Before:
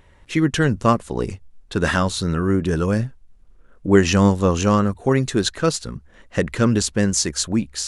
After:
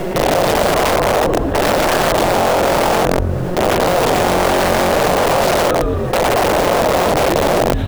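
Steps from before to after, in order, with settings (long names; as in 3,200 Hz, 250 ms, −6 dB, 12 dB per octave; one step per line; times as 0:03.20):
peak hold with a rise ahead of every peak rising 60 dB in 1.51 s
one-pitch LPC vocoder at 8 kHz 180 Hz
in parallel at −7.5 dB: decimation without filtering 37×
on the sum: output level in coarse steps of 22 dB
comb filter 5.4 ms, depth 92%
on a send: echo with shifted repeats 117 ms, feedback 44%, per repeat −44 Hz, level −3.5 dB
on the sum: background noise pink −45 dBFS
high-shelf EQ 2,200 Hz −8.5 dB
wrap-around overflow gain 14.5 dB
parametric band 610 Hz +12 dB 1.3 octaves
envelope flattener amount 70%
level −1.5 dB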